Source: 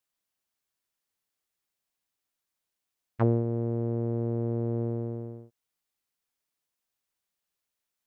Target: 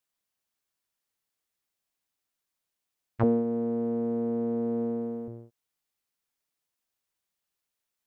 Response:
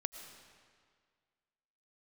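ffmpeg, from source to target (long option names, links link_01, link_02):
-filter_complex "[0:a]asettb=1/sr,asplit=3[link_01][link_02][link_03];[link_01]atrim=end=3.234[link_04];[link_02]atrim=start=3.23:end=5.28,asetpts=PTS-STARTPTS,afade=type=in:duration=0.004:curve=qsin,afade=type=out:start_time=2.046:duration=0.004:curve=qsin,aecho=1:1:4.1:0.88,atrim=end_sample=90405[link_05];[link_03]atrim=start=5.276[link_06];[link_04][link_05]acrossfade=duration=0.004:curve1=hsin:curve2=qsin[link_07];[link_07][link_06]acrossfade=duration=0.004:curve1=qsin:curve2=hsin"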